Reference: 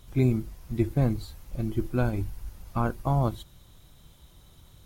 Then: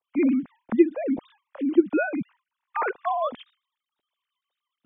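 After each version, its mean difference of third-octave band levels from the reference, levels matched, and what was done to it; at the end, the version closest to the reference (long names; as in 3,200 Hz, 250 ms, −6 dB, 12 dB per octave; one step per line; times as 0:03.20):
13.0 dB: three sine waves on the formant tracks
noise gate with hold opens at −53 dBFS
automatic gain control gain up to 3 dB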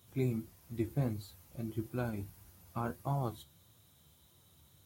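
2.5 dB: high-pass filter 76 Hz 24 dB per octave
high-shelf EQ 8,800 Hz +9.5 dB
flanger 1.6 Hz, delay 7.9 ms, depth 6.9 ms, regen +51%
level −5 dB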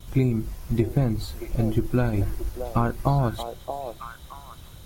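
5.5 dB: noise gate with hold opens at −46 dBFS
downward compressor 6 to 1, threshold −26 dBFS, peak gain reduction 9 dB
on a send: echo through a band-pass that steps 625 ms, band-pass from 590 Hz, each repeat 1.4 octaves, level −3.5 dB
on the sum: level +8.5 dB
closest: second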